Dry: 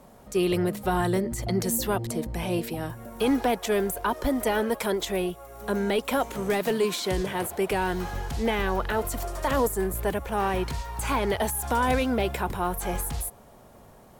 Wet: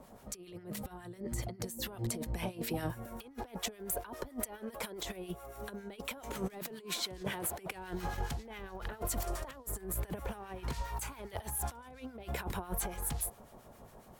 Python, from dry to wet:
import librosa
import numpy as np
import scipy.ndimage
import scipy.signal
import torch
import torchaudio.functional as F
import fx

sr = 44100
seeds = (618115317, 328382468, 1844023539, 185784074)

y = fx.high_shelf(x, sr, hz=fx.line((10.93, 10000.0), (11.39, 5400.0)), db=9.0, at=(10.93, 11.39), fade=0.02)
y = fx.over_compress(y, sr, threshold_db=-31.0, ratio=-0.5)
y = fx.harmonic_tremolo(y, sr, hz=7.3, depth_pct=70, crossover_hz=1300.0)
y = F.gain(torch.from_numpy(y), -5.0).numpy()